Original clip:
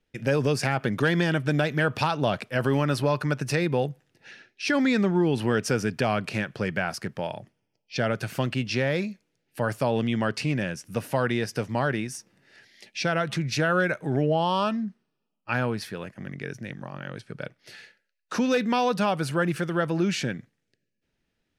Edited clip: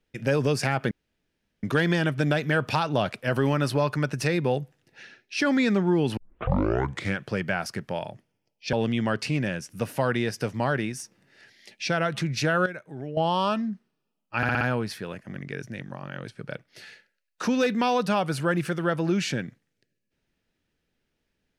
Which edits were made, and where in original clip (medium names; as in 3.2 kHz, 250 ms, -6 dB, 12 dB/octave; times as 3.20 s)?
0.91 s: insert room tone 0.72 s
5.45 s: tape start 1.02 s
8.01–9.88 s: delete
13.81–14.32 s: gain -11.5 dB
15.52 s: stutter 0.06 s, 5 plays